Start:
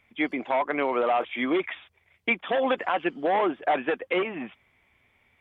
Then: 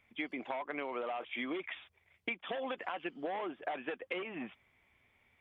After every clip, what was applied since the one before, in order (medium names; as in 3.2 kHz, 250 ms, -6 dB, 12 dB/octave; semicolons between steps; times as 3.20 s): dynamic bell 2.9 kHz, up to +4 dB, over -41 dBFS, Q 1.5; compression, threshold -30 dBFS, peak gain reduction 12 dB; trim -5.5 dB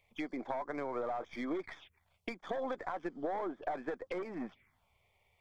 partial rectifier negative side -3 dB; touch-sensitive phaser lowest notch 240 Hz, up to 2.8 kHz, full sweep at -41 dBFS; trim +3.5 dB